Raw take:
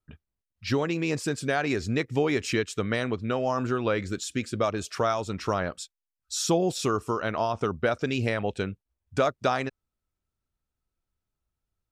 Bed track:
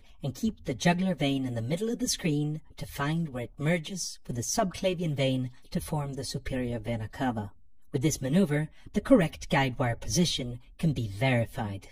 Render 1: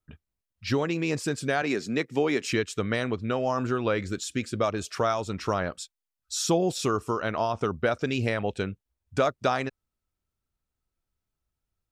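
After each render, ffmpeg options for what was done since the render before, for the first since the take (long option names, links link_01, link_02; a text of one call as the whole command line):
ffmpeg -i in.wav -filter_complex "[0:a]asettb=1/sr,asplit=3[link_01][link_02][link_03];[link_01]atrim=end=1.624[link_04];[link_02]atrim=start=1.62:end=2.52,asetpts=PTS-STARTPTS,afade=type=in:duration=0.004:curve=qsin,afade=type=out:start_time=0.896:duration=0.004:curve=qsin,highpass=frequency=160:width=0.5412,highpass=frequency=160:width=1.3066[link_05];[link_03]atrim=start=2.516[link_06];[link_04][link_05]acrossfade=duration=0.004:curve1=hsin:curve2=qsin[link_07];[link_07][link_06]acrossfade=duration=0.004:curve1=qsin:curve2=hsin" out.wav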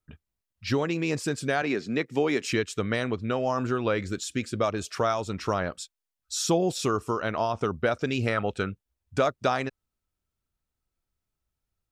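ffmpeg -i in.wav -filter_complex "[0:a]asettb=1/sr,asplit=3[link_01][link_02][link_03];[link_01]atrim=end=1.644[link_04];[link_02]atrim=start=1.64:end=2.06,asetpts=PTS-STARTPTS,afade=type=in:duration=0.004:curve=qsin,afade=type=out:start_time=0.416:duration=0.004:curve=qsin,acrossover=split=4800[link_05][link_06];[link_06]acompressor=threshold=-56dB:ratio=4:attack=1:release=60[link_07];[link_05][link_07]amix=inputs=2:normalize=0[link_08];[link_03]atrim=start=2.056[link_09];[link_04][link_08]acrossfade=duration=0.004:curve1=hsin:curve2=qsin[link_10];[link_10][link_09]acrossfade=duration=0.004:curve1=qsin:curve2=hsin,asettb=1/sr,asplit=3[link_11][link_12][link_13];[link_11]atrim=end=8.234[link_14];[link_12]atrim=start=8.23:end=8.7,asetpts=PTS-STARTPTS,afade=type=in:duration=0.004:curve=qsin,afade=type=out:start_time=0.466:duration=0.004:curve=qsin,equalizer=frequency=1300:width=5.3:gain=12.5[link_15];[link_13]atrim=start=8.696[link_16];[link_14][link_15]acrossfade=duration=0.004:curve1=hsin:curve2=qsin[link_17];[link_17][link_16]acrossfade=duration=0.004:curve1=qsin:curve2=hsin" out.wav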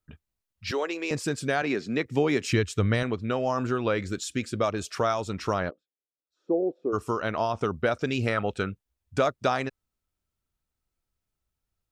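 ffmpeg -i in.wav -filter_complex "[0:a]asettb=1/sr,asplit=3[link_01][link_02][link_03];[link_01]atrim=end=0.714[link_04];[link_02]atrim=start=0.71:end=1.11,asetpts=PTS-STARTPTS,afade=type=in:duration=0.004:curve=qsin,afade=type=out:start_time=0.396:duration=0.004:curve=qsin,highpass=frequency=360:width=0.5412,highpass=frequency=360:width=1.3066[link_05];[link_03]atrim=start=1.106[link_06];[link_04][link_05]acrossfade=duration=0.004:curve1=hsin:curve2=qsin[link_07];[link_07][link_06]acrossfade=duration=0.004:curve1=qsin:curve2=hsin,asettb=1/sr,asplit=3[link_08][link_09][link_10];[link_08]atrim=end=2.054[link_11];[link_09]atrim=start=2.05:end=3.03,asetpts=PTS-STARTPTS,afade=type=in:duration=0.004:curve=qsin,afade=type=out:start_time=0.976:duration=0.004:curve=qsin,equalizer=frequency=77:width=0.96:gain=14.5[link_12];[link_10]atrim=start=3.026[link_13];[link_11][link_12]acrossfade=duration=0.004:curve1=hsin:curve2=qsin[link_14];[link_14][link_13]acrossfade=duration=0.004:curve1=qsin:curve2=hsin,asplit=3[link_15][link_16][link_17];[link_15]afade=type=out:start_time=5.69:duration=0.02[link_18];[link_16]asuperpass=centerf=400:order=4:qfactor=1.3,afade=type=in:start_time=5.69:duration=0.02,afade=type=out:start_time=6.92:duration=0.02[link_19];[link_17]afade=type=in:start_time=6.92:duration=0.02[link_20];[link_18][link_19][link_20]amix=inputs=3:normalize=0" out.wav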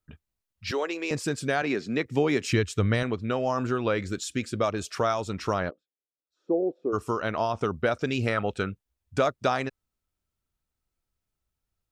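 ffmpeg -i in.wav -af anull out.wav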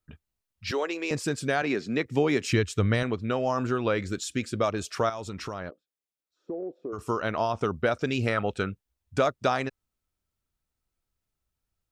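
ffmpeg -i in.wav -filter_complex "[0:a]asettb=1/sr,asplit=3[link_01][link_02][link_03];[link_01]atrim=end=5.094[link_04];[link_02]atrim=start=5.09:end=6.99,asetpts=PTS-STARTPTS,afade=type=in:duration=0.004:curve=qsin,afade=type=out:start_time=1.896:duration=0.004:curve=qsin,acompressor=threshold=-31dB:ratio=5:attack=3.2:release=140:knee=1:detection=peak[link_05];[link_03]atrim=start=6.986[link_06];[link_04][link_05]acrossfade=duration=0.004:curve1=hsin:curve2=qsin[link_07];[link_07][link_06]acrossfade=duration=0.004:curve1=qsin:curve2=hsin" out.wav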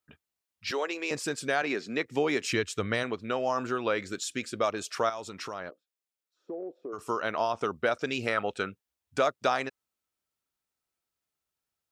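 ffmpeg -i in.wav -af "highpass=frequency=170:poles=1,lowshelf=frequency=250:gain=-9" out.wav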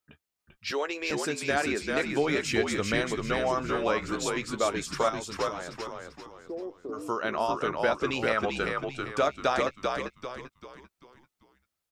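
ffmpeg -i in.wav -filter_complex "[0:a]asplit=2[link_01][link_02];[link_02]adelay=14,volume=-12.5dB[link_03];[link_01][link_03]amix=inputs=2:normalize=0,asplit=2[link_04][link_05];[link_05]asplit=5[link_06][link_07][link_08][link_09][link_10];[link_06]adelay=392,afreqshift=-66,volume=-3.5dB[link_11];[link_07]adelay=784,afreqshift=-132,volume=-11.9dB[link_12];[link_08]adelay=1176,afreqshift=-198,volume=-20.3dB[link_13];[link_09]adelay=1568,afreqshift=-264,volume=-28.7dB[link_14];[link_10]adelay=1960,afreqshift=-330,volume=-37.1dB[link_15];[link_11][link_12][link_13][link_14][link_15]amix=inputs=5:normalize=0[link_16];[link_04][link_16]amix=inputs=2:normalize=0" out.wav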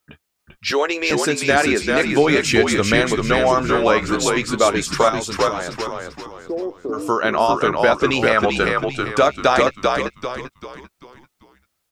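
ffmpeg -i in.wav -af "volume=11.5dB,alimiter=limit=-3dB:level=0:latency=1" out.wav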